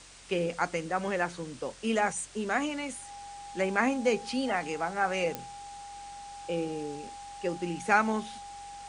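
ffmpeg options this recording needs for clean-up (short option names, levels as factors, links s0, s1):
-af "adeclick=t=4,bandreject=f=45.4:t=h:w=4,bandreject=f=90.8:t=h:w=4,bandreject=f=136.2:t=h:w=4,bandreject=f=181.6:t=h:w=4,bandreject=f=810:w=30,afwtdn=0.0035"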